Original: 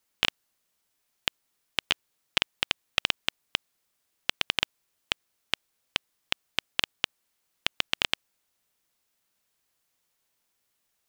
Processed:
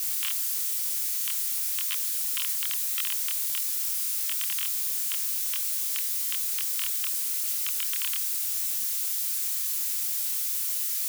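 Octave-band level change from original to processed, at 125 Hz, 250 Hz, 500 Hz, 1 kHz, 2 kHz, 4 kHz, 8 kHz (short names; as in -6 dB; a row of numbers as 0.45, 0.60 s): under -40 dB, under -40 dB, under -40 dB, -10.0 dB, -8.0 dB, -5.0 dB, +18.5 dB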